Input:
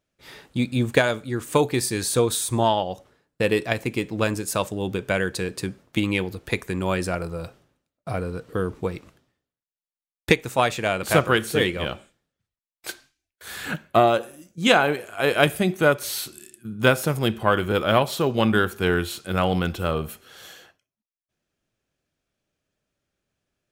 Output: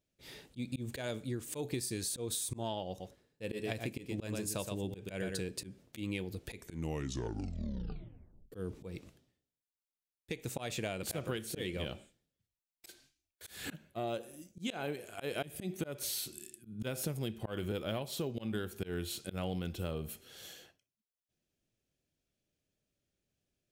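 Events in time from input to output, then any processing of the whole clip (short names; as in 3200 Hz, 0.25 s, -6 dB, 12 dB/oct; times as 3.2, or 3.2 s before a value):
2.88–5.39 echo 0.12 s -7 dB
6.57 tape stop 1.95 s
whole clip: bell 1200 Hz -10.5 dB 1.5 oct; auto swell 0.2 s; compressor 6:1, threshold -30 dBFS; gain -4 dB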